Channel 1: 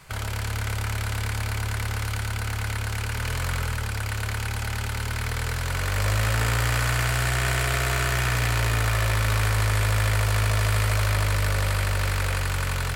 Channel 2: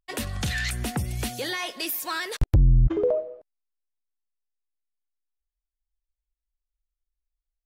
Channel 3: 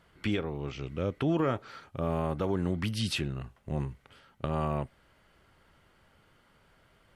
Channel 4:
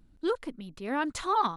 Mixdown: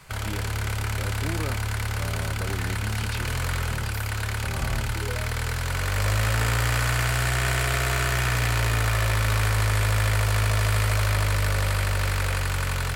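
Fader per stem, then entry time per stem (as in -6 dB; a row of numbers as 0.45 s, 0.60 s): 0.0 dB, -14.5 dB, -6.5 dB, mute; 0.00 s, 2.05 s, 0.00 s, mute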